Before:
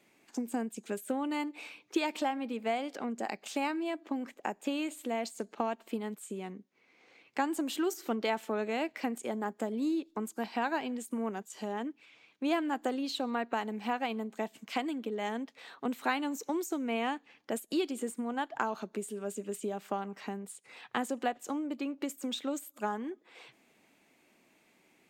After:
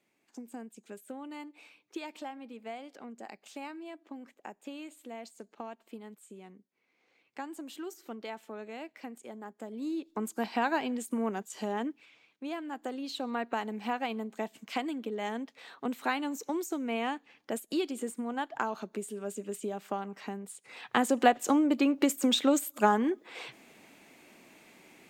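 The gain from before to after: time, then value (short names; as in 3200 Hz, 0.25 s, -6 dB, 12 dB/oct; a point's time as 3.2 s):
9.56 s -9.5 dB
10.28 s +3 dB
11.89 s +3 dB
12.52 s -8 dB
13.42 s 0 dB
20.45 s 0 dB
21.3 s +10 dB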